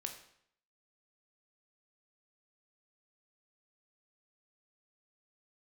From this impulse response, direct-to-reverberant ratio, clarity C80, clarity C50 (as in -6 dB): 4.0 dB, 11.5 dB, 8.5 dB